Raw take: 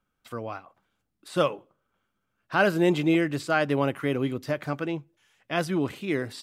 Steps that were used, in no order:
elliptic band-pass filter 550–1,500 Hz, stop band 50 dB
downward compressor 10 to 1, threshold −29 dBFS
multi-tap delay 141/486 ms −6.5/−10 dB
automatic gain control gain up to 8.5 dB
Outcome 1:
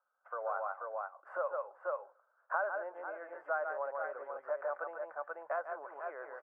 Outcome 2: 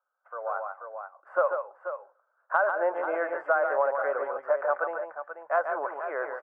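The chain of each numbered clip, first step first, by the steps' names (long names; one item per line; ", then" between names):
multi-tap delay, then automatic gain control, then downward compressor, then elliptic band-pass filter
elliptic band-pass filter, then downward compressor, then multi-tap delay, then automatic gain control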